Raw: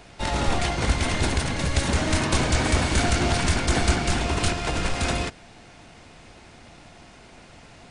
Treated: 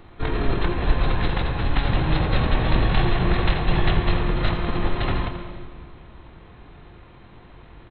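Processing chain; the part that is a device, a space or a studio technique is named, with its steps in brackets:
monster voice (pitch shifter −12 semitones; formants moved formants −3 semitones; low-shelf EQ 160 Hz +4.5 dB; single-tap delay 83 ms −10 dB; convolution reverb RT60 1.8 s, pre-delay 106 ms, DRR 9 dB)

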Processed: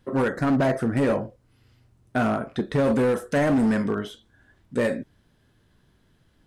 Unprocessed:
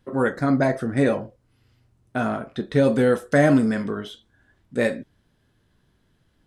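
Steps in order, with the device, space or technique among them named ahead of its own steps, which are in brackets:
dynamic equaliser 3,600 Hz, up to −6 dB, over −46 dBFS, Q 1.3
limiter into clipper (brickwall limiter −13.5 dBFS, peak gain reduction 7 dB; hard clipping −19.5 dBFS, distortion −13 dB)
level +2.5 dB

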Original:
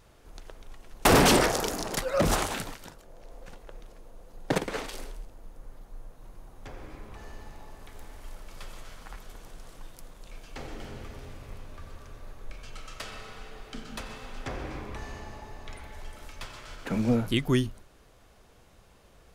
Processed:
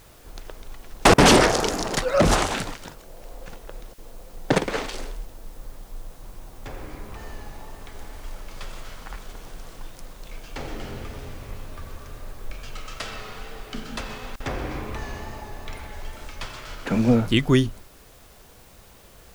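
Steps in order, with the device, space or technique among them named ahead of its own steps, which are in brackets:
worn cassette (low-pass filter 8,300 Hz 12 dB per octave; tape wow and flutter; tape dropouts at 0:01.14/0:03.94/0:14.36, 40 ms −30 dB; white noise bed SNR 29 dB)
level +6.5 dB

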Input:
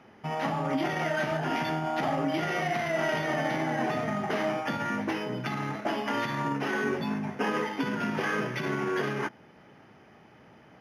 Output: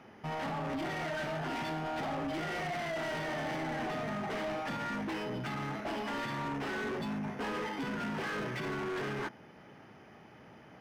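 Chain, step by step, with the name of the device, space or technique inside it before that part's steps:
saturation between pre-emphasis and de-emphasis (high-shelf EQ 4,200 Hz +8.5 dB; soft clipping −33 dBFS, distortion −8 dB; high-shelf EQ 4,200 Hz −8.5 dB)

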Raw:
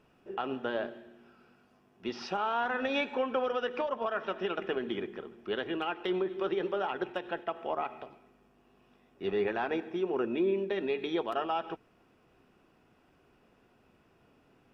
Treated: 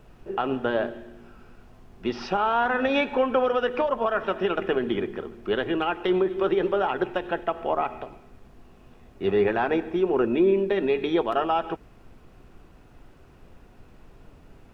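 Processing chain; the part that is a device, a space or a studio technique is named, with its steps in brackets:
car interior (parametric band 100 Hz +6 dB 0.8 octaves; high-shelf EQ 3,400 Hz −7.5 dB; brown noise bed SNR 23 dB)
level +8.5 dB

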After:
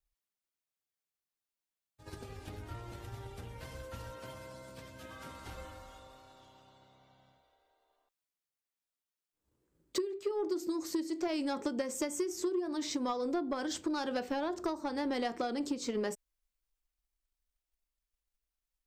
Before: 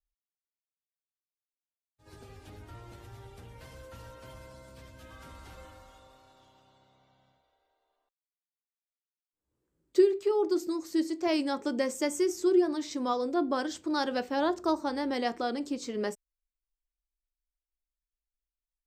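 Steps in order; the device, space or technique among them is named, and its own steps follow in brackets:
0:04.13–0:05.46: high-pass filter 110 Hz 12 dB per octave
drum-bus smash (transient designer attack +7 dB, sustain +3 dB; downward compressor 12 to 1, threshold −30 dBFS, peak gain reduction 20 dB; soft clipping −26 dBFS, distortion −18 dB)
level +1.5 dB

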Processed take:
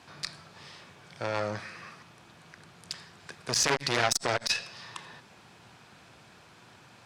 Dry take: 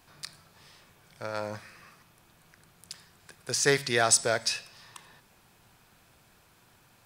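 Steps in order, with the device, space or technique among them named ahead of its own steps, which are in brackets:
valve radio (band-pass filter 100–6,000 Hz; tube saturation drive 20 dB, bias 0.3; saturating transformer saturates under 1,900 Hz)
level +8.5 dB

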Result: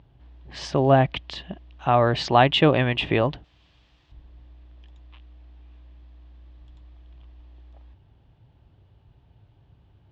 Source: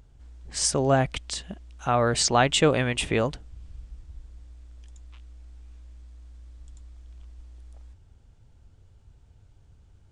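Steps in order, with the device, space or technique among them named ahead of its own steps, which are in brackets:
guitar cabinet (loudspeaker in its box 80–3,400 Hz, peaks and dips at 80 Hz −9 dB, 220 Hz −6 dB, 470 Hz −6 dB, 1,400 Hz −8 dB, 2,200 Hz −5 dB)
0:03.44–0:04.12: spectral tilt +4 dB per octave
level +6 dB

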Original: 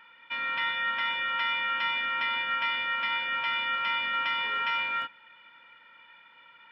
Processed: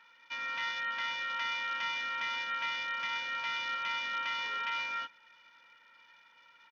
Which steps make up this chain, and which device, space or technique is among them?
Bluetooth headset (high-pass filter 180 Hz 6 dB per octave; downsampling to 8,000 Hz; level −6 dB; SBC 64 kbit/s 48,000 Hz)

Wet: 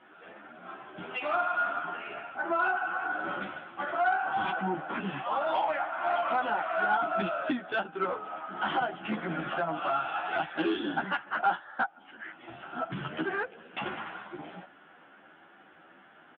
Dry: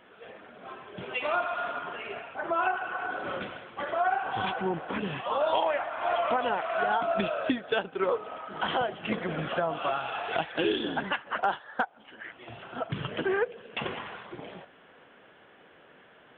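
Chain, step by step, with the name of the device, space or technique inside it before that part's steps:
barber-pole flanger into a guitar amplifier (barber-pole flanger 11.2 ms +2.3 Hz; soft clipping −23.5 dBFS, distortion −17 dB; loudspeaker in its box 76–3,700 Hz, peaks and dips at 110 Hz −8 dB, 180 Hz +4 dB, 320 Hz +7 dB, 460 Hz −8 dB, 790 Hz +6 dB, 1,400 Hz +8 dB)

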